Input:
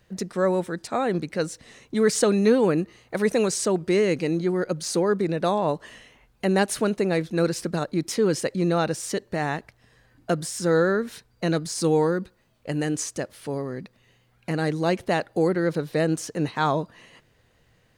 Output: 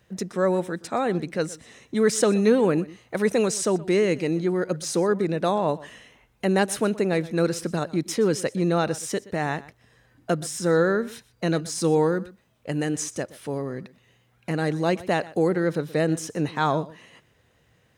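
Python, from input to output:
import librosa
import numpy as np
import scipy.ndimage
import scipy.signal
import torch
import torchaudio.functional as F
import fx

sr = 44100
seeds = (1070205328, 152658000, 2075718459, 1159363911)

y = scipy.signal.sosfilt(scipy.signal.butter(2, 54.0, 'highpass', fs=sr, output='sos'), x)
y = fx.notch(y, sr, hz=4500.0, q=10.0)
y = y + 10.0 ** (-19.5 / 20.0) * np.pad(y, (int(123 * sr / 1000.0), 0))[:len(y)]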